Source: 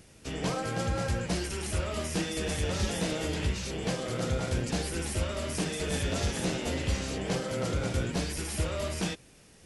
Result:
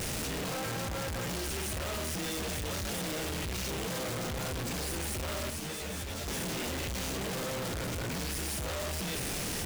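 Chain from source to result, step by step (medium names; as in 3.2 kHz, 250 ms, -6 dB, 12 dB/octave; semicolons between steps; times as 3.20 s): one-bit comparator; 5.50–6.27 s: three-phase chorus; trim -3.5 dB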